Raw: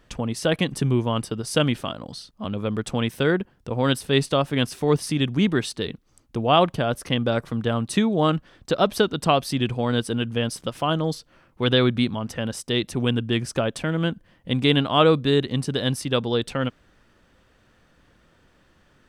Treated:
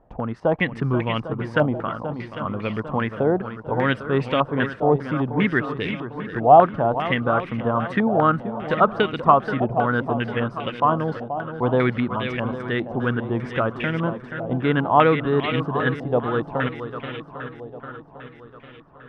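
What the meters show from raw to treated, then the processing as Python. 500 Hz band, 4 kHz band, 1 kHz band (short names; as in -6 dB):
+2.0 dB, -9.0 dB, +7.0 dB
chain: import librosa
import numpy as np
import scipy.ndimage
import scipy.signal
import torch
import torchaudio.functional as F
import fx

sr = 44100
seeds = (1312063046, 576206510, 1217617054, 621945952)

y = fx.echo_swing(x, sr, ms=800, ratio=1.5, feedback_pct=48, wet_db=-10.0)
y = fx.filter_held_lowpass(y, sr, hz=5.0, low_hz=770.0, high_hz=2300.0)
y = y * 10.0 ** (-1.5 / 20.0)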